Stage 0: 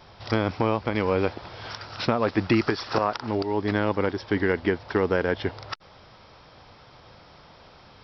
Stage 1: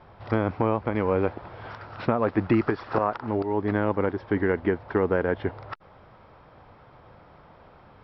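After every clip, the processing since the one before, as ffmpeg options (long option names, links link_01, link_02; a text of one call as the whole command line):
ffmpeg -i in.wav -af "lowpass=1700" out.wav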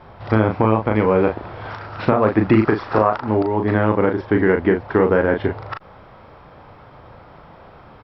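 ffmpeg -i in.wav -filter_complex "[0:a]asplit=2[link_01][link_02];[link_02]adelay=37,volume=-5.5dB[link_03];[link_01][link_03]amix=inputs=2:normalize=0,volume=7dB" out.wav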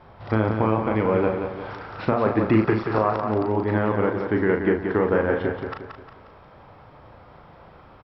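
ffmpeg -i in.wav -af "aecho=1:1:178|356|534|712|890:0.473|0.203|0.0875|0.0376|0.0162,volume=-5.5dB" out.wav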